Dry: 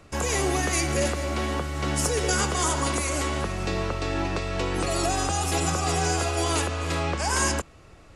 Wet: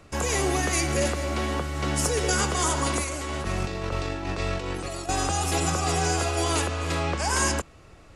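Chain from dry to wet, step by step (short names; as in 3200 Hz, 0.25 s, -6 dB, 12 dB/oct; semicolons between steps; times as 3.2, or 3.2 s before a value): 3.03–5.09 negative-ratio compressor -29 dBFS, ratio -0.5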